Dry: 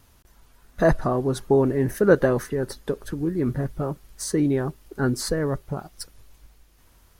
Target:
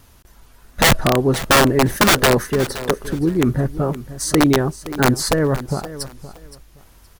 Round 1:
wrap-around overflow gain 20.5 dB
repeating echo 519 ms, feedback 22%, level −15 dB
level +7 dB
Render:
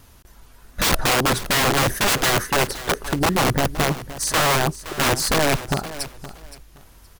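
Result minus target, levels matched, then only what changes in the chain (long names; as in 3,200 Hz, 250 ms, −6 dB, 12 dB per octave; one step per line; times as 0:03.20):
wrap-around overflow: distortion +13 dB
change: wrap-around overflow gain 14 dB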